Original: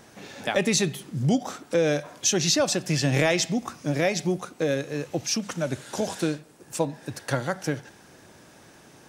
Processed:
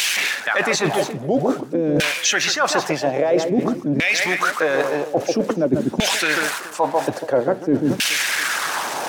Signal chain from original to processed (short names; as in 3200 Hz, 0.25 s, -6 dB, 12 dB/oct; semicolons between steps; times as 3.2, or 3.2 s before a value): switching spikes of -26 dBFS; on a send: echo with dull and thin repeats by turns 0.142 s, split 1900 Hz, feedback 59%, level -9.5 dB; on the sum: LFO band-pass saw down 0.5 Hz 220–2800 Hz; reverse; compressor 8:1, threshold -45 dBFS, peak gain reduction 21 dB; reverse; harmonic-percussive split percussive +7 dB; upward compressor, threshold -53 dBFS; maximiser +33 dB; gain -7 dB